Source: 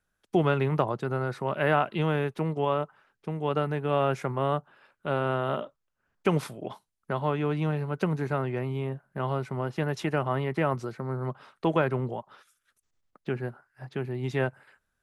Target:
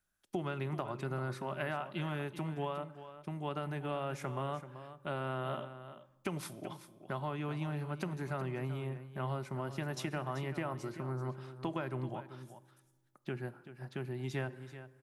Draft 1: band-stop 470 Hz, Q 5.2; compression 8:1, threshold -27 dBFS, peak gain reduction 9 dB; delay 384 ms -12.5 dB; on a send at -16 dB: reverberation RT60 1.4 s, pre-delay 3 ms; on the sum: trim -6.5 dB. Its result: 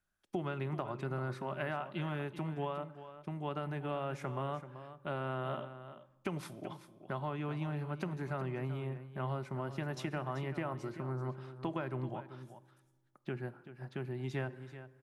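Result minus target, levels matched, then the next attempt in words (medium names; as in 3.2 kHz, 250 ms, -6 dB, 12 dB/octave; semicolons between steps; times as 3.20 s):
8 kHz band -6.0 dB
band-stop 470 Hz, Q 5.2; compression 8:1, threshold -27 dBFS, peak gain reduction 9 dB; treble shelf 5.2 kHz +9 dB; delay 384 ms -12.5 dB; on a send at -16 dB: reverberation RT60 1.4 s, pre-delay 3 ms; on the sum: trim -6.5 dB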